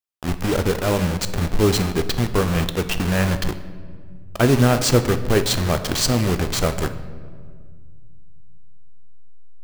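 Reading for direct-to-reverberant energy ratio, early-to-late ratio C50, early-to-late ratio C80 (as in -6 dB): 9.0 dB, 12.0 dB, 13.5 dB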